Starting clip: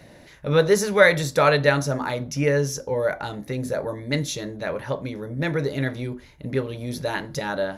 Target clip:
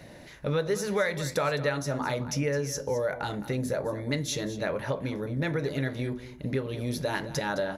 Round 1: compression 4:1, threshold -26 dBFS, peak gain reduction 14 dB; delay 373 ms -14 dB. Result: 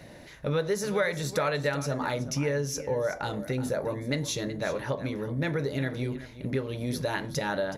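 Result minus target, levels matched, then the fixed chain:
echo 161 ms late
compression 4:1, threshold -26 dBFS, peak gain reduction 14 dB; delay 212 ms -14 dB

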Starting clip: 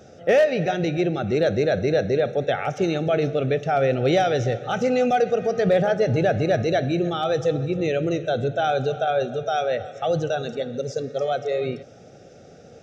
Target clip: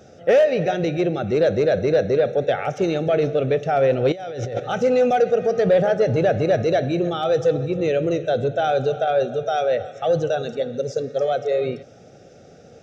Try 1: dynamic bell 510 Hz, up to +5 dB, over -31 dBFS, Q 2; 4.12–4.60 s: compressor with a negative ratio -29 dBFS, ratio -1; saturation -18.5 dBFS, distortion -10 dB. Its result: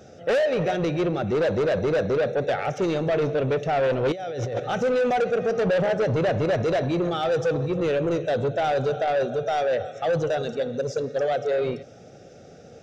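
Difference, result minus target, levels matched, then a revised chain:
saturation: distortion +13 dB
dynamic bell 510 Hz, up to +5 dB, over -31 dBFS, Q 2; 4.12–4.60 s: compressor with a negative ratio -29 dBFS, ratio -1; saturation -7.5 dBFS, distortion -23 dB

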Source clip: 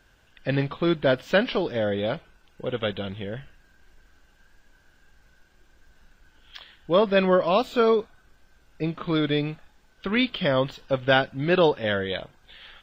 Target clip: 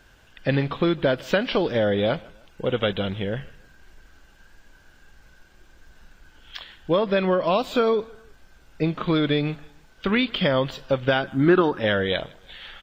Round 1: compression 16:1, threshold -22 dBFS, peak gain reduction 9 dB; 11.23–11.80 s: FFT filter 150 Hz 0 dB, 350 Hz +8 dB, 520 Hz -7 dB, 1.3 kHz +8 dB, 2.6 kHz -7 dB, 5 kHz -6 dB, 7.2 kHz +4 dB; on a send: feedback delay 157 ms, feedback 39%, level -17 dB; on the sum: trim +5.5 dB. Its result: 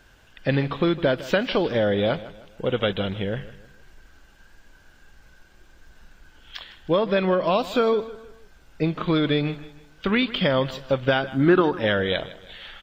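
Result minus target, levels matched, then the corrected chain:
echo-to-direct +8 dB
compression 16:1, threshold -22 dBFS, peak gain reduction 9 dB; 11.23–11.80 s: FFT filter 150 Hz 0 dB, 350 Hz +8 dB, 520 Hz -7 dB, 1.3 kHz +8 dB, 2.6 kHz -7 dB, 5 kHz -6 dB, 7.2 kHz +4 dB; on a send: feedback delay 157 ms, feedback 39%, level -25 dB; on the sum: trim +5.5 dB

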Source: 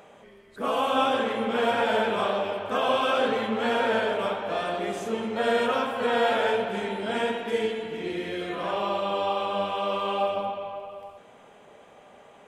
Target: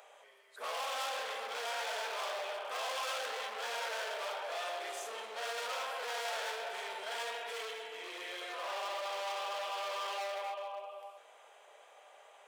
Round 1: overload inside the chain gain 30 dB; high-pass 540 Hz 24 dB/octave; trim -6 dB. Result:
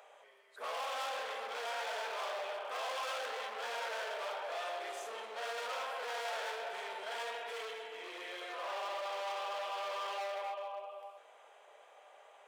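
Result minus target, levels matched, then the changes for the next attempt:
8 kHz band -4.0 dB
add after high-pass: treble shelf 3.4 kHz +6.5 dB

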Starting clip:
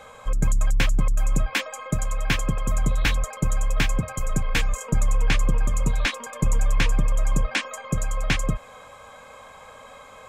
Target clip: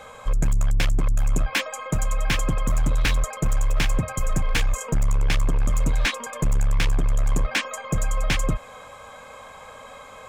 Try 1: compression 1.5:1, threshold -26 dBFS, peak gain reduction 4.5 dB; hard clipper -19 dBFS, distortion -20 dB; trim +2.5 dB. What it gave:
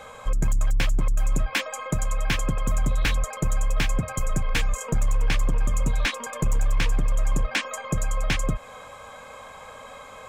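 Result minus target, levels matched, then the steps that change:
compression: peak gain reduction +4.5 dB
remove: compression 1.5:1, threshold -26 dBFS, peak gain reduction 4.5 dB

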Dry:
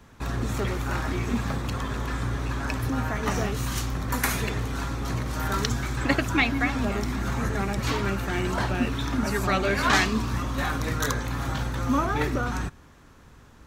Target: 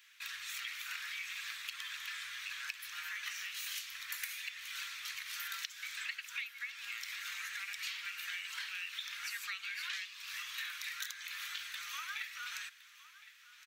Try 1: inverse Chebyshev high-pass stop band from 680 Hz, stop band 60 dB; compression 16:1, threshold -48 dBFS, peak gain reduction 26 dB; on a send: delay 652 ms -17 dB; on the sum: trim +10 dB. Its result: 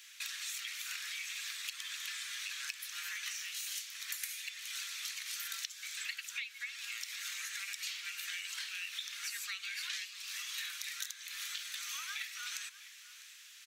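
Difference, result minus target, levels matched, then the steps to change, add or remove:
echo 411 ms early; 8 kHz band +5.0 dB
add after inverse Chebyshev high-pass: peaking EQ 8.1 kHz -14 dB 2.5 oct; change: delay 1063 ms -17 dB

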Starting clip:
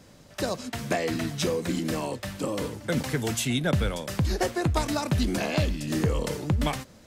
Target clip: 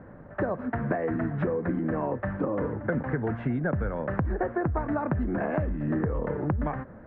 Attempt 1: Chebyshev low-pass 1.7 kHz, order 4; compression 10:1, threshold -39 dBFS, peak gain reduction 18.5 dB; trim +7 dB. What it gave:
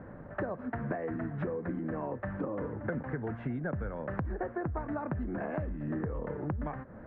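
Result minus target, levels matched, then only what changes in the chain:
compression: peak gain reduction +7 dB
change: compression 10:1, threshold -31 dBFS, peak gain reduction 11.5 dB

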